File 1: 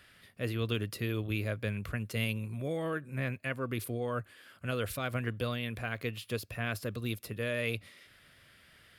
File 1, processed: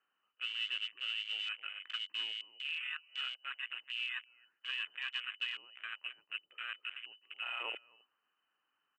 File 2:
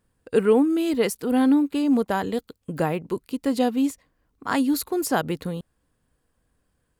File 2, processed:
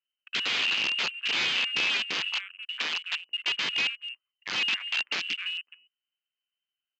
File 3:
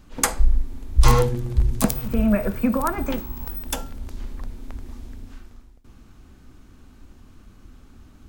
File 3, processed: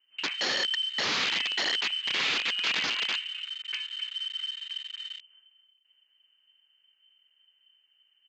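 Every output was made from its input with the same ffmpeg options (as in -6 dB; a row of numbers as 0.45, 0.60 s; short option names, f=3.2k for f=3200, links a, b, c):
-filter_complex "[0:a]asplit=2[a][b];[b]aecho=0:1:261:0.282[c];[a][c]amix=inputs=2:normalize=0,lowpass=f=2.6k:t=q:w=0.5098,lowpass=f=2.6k:t=q:w=0.6013,lowpass=f=2.6k:t=q:w=0.9,lowpass=f=2.6k:t=q:w=2.563,afreqshift=-3100,aresample=11025,aeval=exprs='(mod(7.94*val(0)+1,2)-1)/7.94':c=same,aresample=44100,highpass=170,equalizer=f=670:t=o:w=0.65:g=-5.5,afwtdn=0.02,volume=-4.5dB"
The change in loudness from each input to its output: -4.0, -4.0, -5.0 LU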